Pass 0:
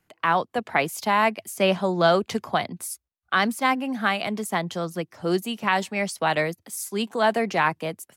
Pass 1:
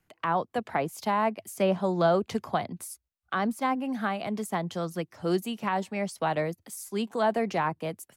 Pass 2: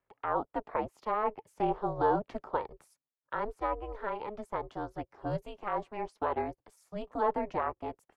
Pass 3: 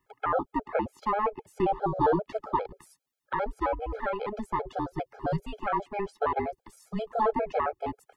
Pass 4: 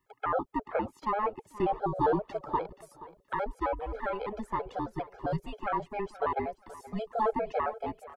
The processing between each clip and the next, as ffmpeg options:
-filter_complex "[0:a]lowshelf=f=78:g=8,acrossover=split=1200[s0][s1];[s1]acompressor=threshold=0.02:ratio=6[s2];[s0][s2]amix=inputs=2:normalize=0,volume=0.668"
-af "bandpass=f=700:t=q:w=0.91:csg=0,aeval=exprs='val(0)*sin(2*PI*210*n/s)':c=same"
-filter_complex "[0:a]asplit=2[s0][s1];[s1]acompressor=threshold=0.0141:ratio=16,volume=1.12[s2];[s0][s2]amix=inputs=2:normalize=0,afftfilt=real='re*gt(sin(2*PI*7.5*pts/sr)*(1-2*mod(floor(b*sr/1024/430),2)),0)':imag='im*gt(sin(2*PI*7.5*pts/sr)*(1-2*mod(floor(b*sr/1024/430),2)),0)':win_size=1024:overlap=0.75,volume=1.78"
-af "aecho=1:1:477|954:0.133|0.0333,volume=0.75"

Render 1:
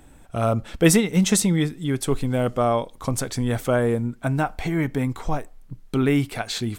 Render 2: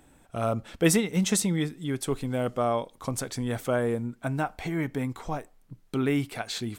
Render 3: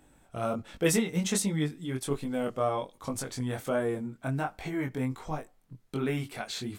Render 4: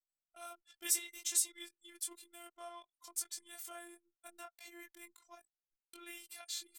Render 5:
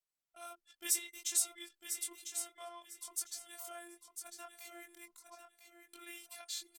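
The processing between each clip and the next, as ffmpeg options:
-af "lowshelf=f=71:g=-10.5,volume=0.562"
-af "flanger=delay=19.5:depth=4:speed=1.3"
-af "aderivative,afftfilt=real='hypot(re,im)*cos(PI*b)':imag='0':win_size=512:overlap=0.75,anlmdn=0.000158,volume=1.33"
-af "aecho=1:1:1000|2000|3000:0.398|0.0876|0.0193" -ar 48000 -c:a libopus -b:a 256k

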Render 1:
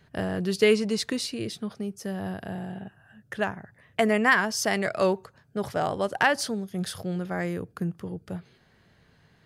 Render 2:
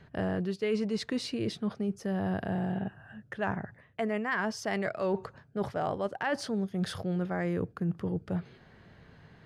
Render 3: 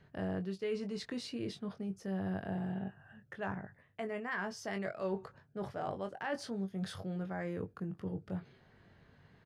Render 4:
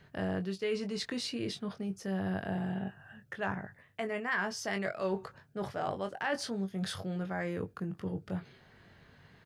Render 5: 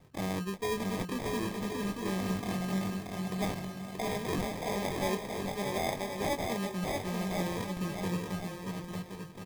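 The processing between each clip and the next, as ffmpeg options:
-af "areverse,acompressor=threshold=0.02:ratio=6,areverse,aemphasis=mode=reproduction:type=75kf,volume=2"
-filter_complex "[0:a]asplit=2[s0][s1];[s1]adelay=21,volume=0.447[s2];[s0][s2]amix=inputs=2:normalize=0,volume=0.398"
-af "tiltshelf=f=1300:g=-3,volume=1.88"
-af "acrusher=samples=31:mix=1:aa=0.000001,aecho=1:1:630|1071|1380|1596|1747:0.631|0.398|0.251|0.158|0.1"

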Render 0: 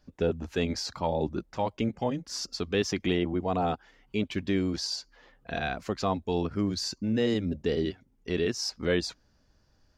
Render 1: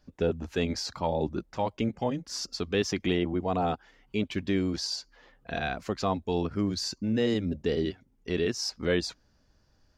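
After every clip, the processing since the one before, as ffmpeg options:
-af anull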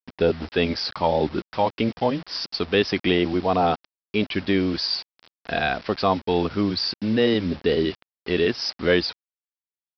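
-af "aresample=11025,acrusher=bits=7:mix=0:aa=0.000001,aresample=44100,lowshelf=f=230:g=-7.5,volume=2.82"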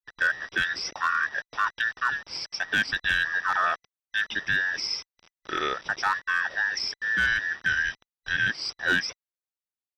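-af "afftfilt=real='real(if(between(b,1,1012),(2*floor((b-1)/92)+1)*92-b,b),0)':imag='imag(if(between(b,1,1012),(2*floor((b-1)/92)+1)*92-b,b),0)*if(between(b,1,1012),-1,1)':win_size=2048:overlap=0.75,asoftclip=type=hard:threshold=0.282,volume=0.596"

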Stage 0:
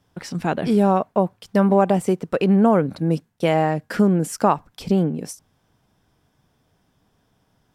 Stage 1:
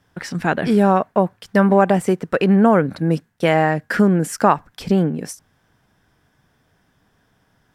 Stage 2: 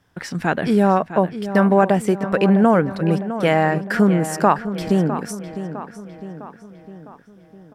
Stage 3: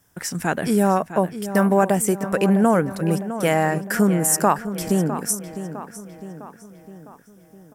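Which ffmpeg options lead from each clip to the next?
-af "equalizer=f=1700:w=2:g=8,volume=1.26"
-filter_complex "[0:a]asplit=2[s0][s1];[s1]adelay=656,lowpass=f=4000:p=1,volume=0.266,asplit=2[s2][s3];[s3]adelay=656,lowpass=f=4000:p=1,volume=0.54,asplit=2[s4][s5];[s5]adelay=656,lowpass=f=4000:p=1,volume=0.54,asplit=2[s6][s7];[s7]adelay=656,lowpass=f=4000:p=1,volume=0.54,asplit=2[s8][s9];[s9]adelay=656,lowpass=f=4000:p=1,volume=0.54,asplit=2[s10][s11];[s11]adelay=656,lowpass=f=4000:p=1,volume=0.54[s12];[s0][s2][s4][s6][s8][s10][s12]amix=inputs=7:normalize=0,volume=0.891"
-af "aexciter=amount=7.1:drive=3.1:freq=5900,volume=0.75"

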